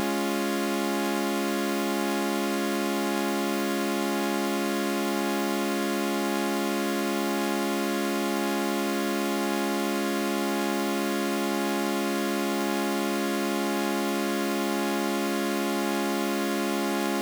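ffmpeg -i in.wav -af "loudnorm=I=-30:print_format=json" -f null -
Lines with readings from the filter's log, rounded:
"input_i" : "-27.0",
"input_tp" : "-15.9",
"input_lra" : "0.0",
"input_thresh" : "-37.0",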